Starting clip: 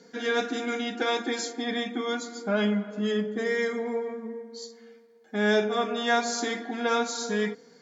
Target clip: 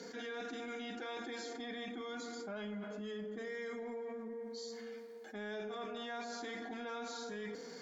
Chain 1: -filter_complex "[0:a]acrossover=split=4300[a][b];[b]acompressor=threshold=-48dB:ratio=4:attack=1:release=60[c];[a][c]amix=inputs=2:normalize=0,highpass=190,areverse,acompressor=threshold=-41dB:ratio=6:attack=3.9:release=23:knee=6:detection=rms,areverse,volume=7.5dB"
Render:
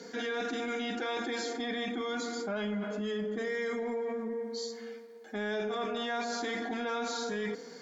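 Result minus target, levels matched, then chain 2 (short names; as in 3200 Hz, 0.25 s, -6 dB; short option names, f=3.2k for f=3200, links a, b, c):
compressor: peak gain reduction -9 dB
-filter_complex "[0:a]acrossover=split=4300[a][b];[b]acompressor=threshold=-48dB:ratio=4:attack=1:release=60[c];[a][c]amix=inputs=2:normalize=0,highpass=190,areverse,acompressor=threshold=-52dB:ratio=6:attack=3.9:release=23:knee=6:detection=rms,areverse,volume=7.5dB"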